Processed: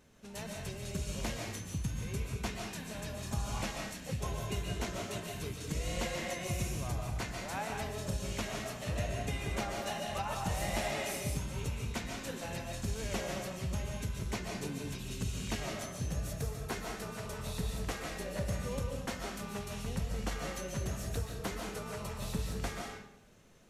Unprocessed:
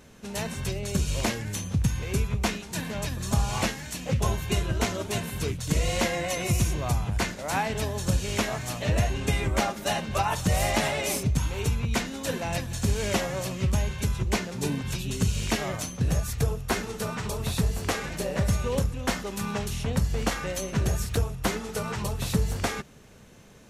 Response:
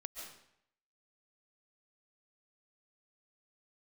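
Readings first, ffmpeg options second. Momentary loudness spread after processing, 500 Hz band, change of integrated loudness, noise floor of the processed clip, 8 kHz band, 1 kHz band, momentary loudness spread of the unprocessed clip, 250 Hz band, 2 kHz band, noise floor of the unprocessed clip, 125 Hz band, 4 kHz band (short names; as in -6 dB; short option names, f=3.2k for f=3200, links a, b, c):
5 LU, -9.0 dB, -10.0 dB, -46 dBFS, -9.5 dB, -9.5 dB, 5 LU, -10.0 dB, -9.5 dB, -42 dBFS, -10.5 dB, -9.0 dB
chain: -filter_complex "[1:a]atrim=start_sample=2205[a];[0:a][a]afir=irnorm=-1:irlink=0,volume=-6.5dB"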